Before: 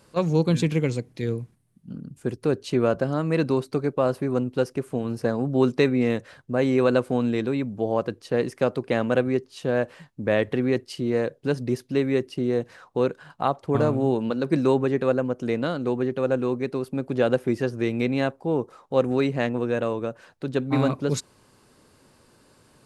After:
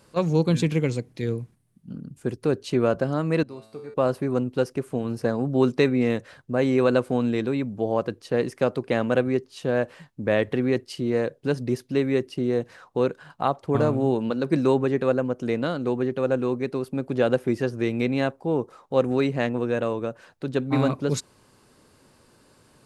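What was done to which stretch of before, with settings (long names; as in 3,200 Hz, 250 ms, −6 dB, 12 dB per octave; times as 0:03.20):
0:03.43–0:03.94: tuned comb filter 110 Hz, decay 0.78 s, mix 90%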